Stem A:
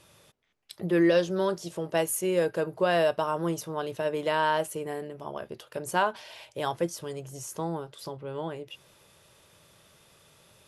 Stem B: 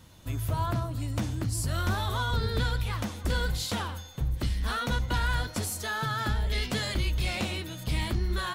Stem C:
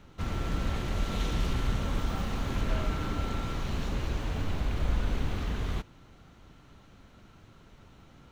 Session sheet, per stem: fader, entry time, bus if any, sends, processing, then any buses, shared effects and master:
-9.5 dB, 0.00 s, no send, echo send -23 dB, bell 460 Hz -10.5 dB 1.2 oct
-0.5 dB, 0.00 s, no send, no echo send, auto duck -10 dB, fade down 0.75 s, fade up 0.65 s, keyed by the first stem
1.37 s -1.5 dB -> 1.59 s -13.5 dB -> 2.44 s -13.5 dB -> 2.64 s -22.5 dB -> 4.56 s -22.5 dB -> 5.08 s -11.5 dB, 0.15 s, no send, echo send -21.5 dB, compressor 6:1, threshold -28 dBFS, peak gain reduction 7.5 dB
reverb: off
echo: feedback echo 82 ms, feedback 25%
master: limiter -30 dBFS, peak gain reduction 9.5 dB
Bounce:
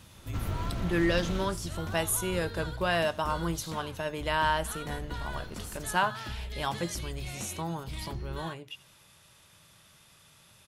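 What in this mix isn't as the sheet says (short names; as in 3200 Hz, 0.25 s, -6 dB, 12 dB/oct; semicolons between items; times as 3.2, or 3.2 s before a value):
stem A -9.5 dB -> +1.5 dB; master: missing limiter -30 dBFS, peak gain reduction 9.5 dB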